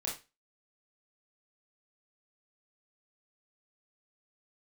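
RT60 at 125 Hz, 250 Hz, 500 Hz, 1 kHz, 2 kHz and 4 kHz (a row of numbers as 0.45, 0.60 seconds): 0.25, 0.25, 0.25, 0.25, 0.30, 0.30 seconds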